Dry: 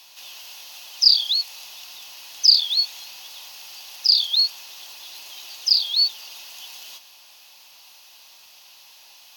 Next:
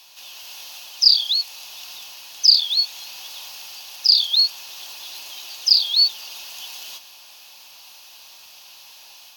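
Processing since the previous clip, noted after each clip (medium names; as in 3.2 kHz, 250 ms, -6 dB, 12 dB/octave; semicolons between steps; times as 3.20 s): level rider gain up to 4 dB; bass shelf 62 Hz +6 dB; band-stop 2 kHz, Q 17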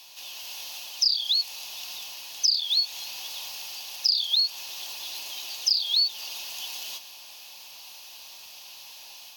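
peaking EQ 1.4 kHz -5 dB 0.59 oct; compression 6:1, threshold -20 dBFS, peak gain reduction 12 dB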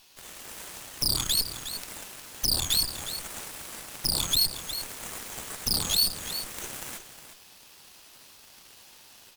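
peak limiter -20.5 dBFS, peak gain reduction 9.5 dB; Chebyshev shaper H 3 -8 dB, 4 -11 dB, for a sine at -20.5 dBFS; delay 361 ms -11 dB; trim +4.5 dB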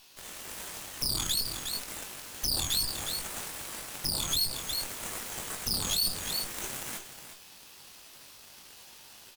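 peak limiter -18 dBFS, peak gain reduction 7 dB; doubling 21 ms -7 dB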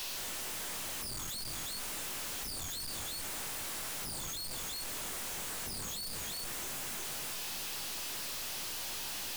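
one-bit comparator; trim -4.5 dB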